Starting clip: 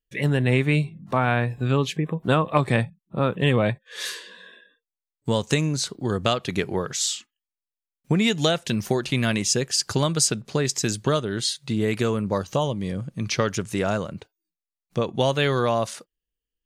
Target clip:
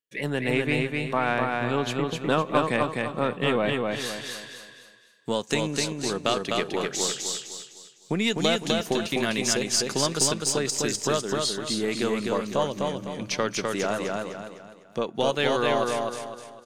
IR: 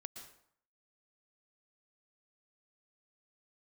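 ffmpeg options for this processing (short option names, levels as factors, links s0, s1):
-filter_complex "[0:a]highpass=220,aeval=exprs='0.596*(cos(1*acos(clip(val(0)/0.596,-1,1)))-cos(1*PI/2))+0.0188*(cos(6*acos(clip(val(0)/0.596,-1,1)))-cos(6*PI/2))':c=same,aecho=1:1:253|506|759|1012|1265:0.708|0.269|0.102|0.0388|0.0148,asplit=2[s0][s1];[1:a]atrim=start_sample=2205,asetrate=24255,aresample=44100[s2];[s1][s2]afir=irnorm=-1:irlink=0,volume=0.224[s3];[s0][s3]amix=inputs=2:normalize=0,volume=0.631"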